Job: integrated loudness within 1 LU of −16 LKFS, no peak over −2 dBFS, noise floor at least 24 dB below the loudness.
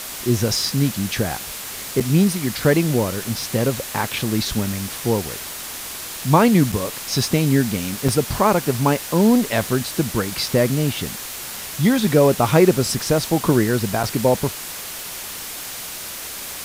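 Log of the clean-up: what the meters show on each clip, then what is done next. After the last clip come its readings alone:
number of dropouts 4; longest dropout 5.4 ms; background noise floor −32 dBFS; target noise floor −45 dBFS; integrated loudness −20.5 LKFS; sample peak −2.0 dBFS; target loudness −16.0 LKFS
→ repair the gap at 0:02.00/0:06.72/0:08.08/0:14.03, 5.4 ms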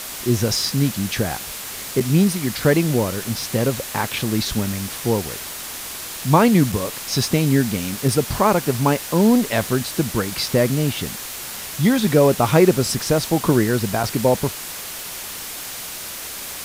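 number of dropouts 0; background noise floor −32 dBFS; target noise floor −45 dBFS
→ broadband denoise 13 dB, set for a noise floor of −32 dBFS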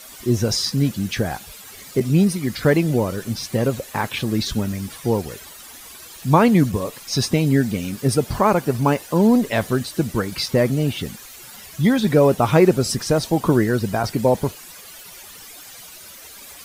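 background noise floor −41 dBFS; target noise floor −44 dBFS
→ broadband denoise 6 dB, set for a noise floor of −41 dBFS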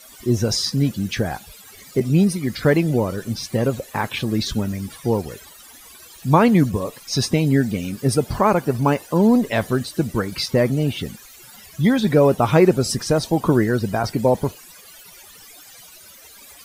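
background noise floor −45 dBFS; integrated loudness −20.0 LKFS; sample peak −2.5 dBFS; target loudness −16.0 LKFS
→ level +4 dB
brickwall limiter −2 dBFS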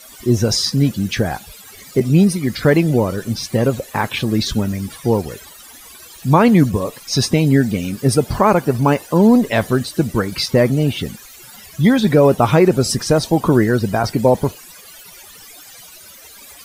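integrated loudness −16.5 LKFS; sample peak −2.0 dBFS; background noise floor −41 dBFS

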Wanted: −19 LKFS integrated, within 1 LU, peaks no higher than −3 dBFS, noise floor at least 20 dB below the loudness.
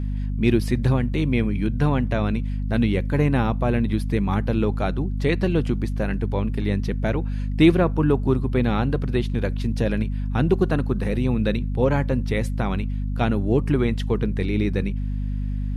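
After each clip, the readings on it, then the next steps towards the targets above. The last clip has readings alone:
mains hum 50 Hz; hum harmonics up to 250 Hz; level of the hum −23 dBFS; integrated loudness −23.0 LKFS; sample peak −4.5 dBFS; target loudness −19.0 LKFS
→ hum removal 50 Hz, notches 5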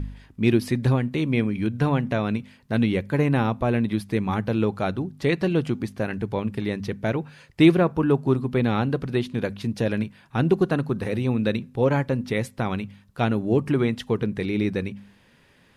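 mains hum none found; integrated loudness −24.0 LKFS; sample peak −4.5 dBFS; target loudness −19.0 LKFS
→ level +5 dB
brickwall limiter −3 dBFS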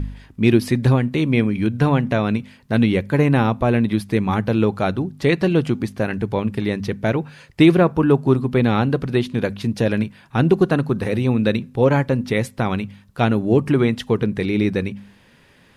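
integrated loudness −19.5 LKFS; sample peak −3.0 dBFS; background noise floor −53 dBFS

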